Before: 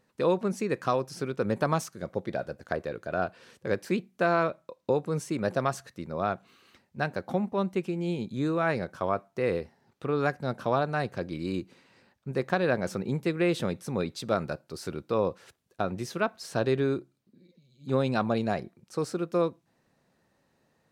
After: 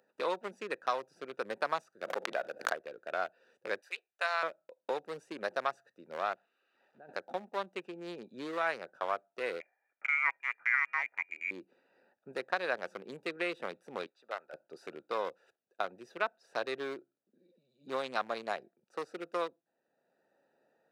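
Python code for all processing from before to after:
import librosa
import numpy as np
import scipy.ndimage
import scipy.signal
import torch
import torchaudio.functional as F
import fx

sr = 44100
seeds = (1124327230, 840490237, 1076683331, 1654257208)

y = fx.chain(x, sr, fx.highpass(hz=180.0, slope=12),
    fx.leveller(passes=1),
    fx.pre_swell(db_per_s=93.0), at=(2.01, 2.73))
y = fx.chain(y, sr, fx.highpass(hz=550.0, slope=24),
    fx.tilt_shelf(db=-8.0, hz=1500.0), at=(3.81, 4.43))
y = fx.chain(y, sr, fx.crossing_spikes(level_db=-25.5),
    fx.level_steps(step_db=22),
    fx.spacing_loss(db_at_10k=45), at=(6.34, 7.09))
y = fx.chain(y, sr, fx.highpass(hz=190.0, slope=24),
    fx.gate_hold(open_db=-58.0, close_db=-64.0, hold_ms=71.0, range_db=-21, attack_ms=1.4, release_ms=100.0),
    fx.freq_invert(carrier_hz=2600), at=(9.6, 11.51))
y = fx.chain(y, sr, fx.highpass(hz=1200.0, slope=12),
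    fx.tilt_eq(slope=-4.5), at=(14.06, 14.53))
y = fx.wiener(y, sr, points=41)
y = scipy.signal.sosfilt(scipy.signal.butter(2, 780.0, 'highpass', fs=sr, output='sos'), y)
y = fx.band_squash(y, sr, depth_pct=40)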